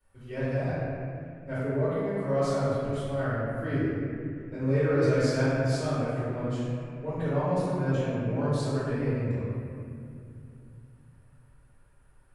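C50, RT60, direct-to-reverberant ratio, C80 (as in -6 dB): -4.5 dB, 2.5 s, -14.5 dB, -2.0 dB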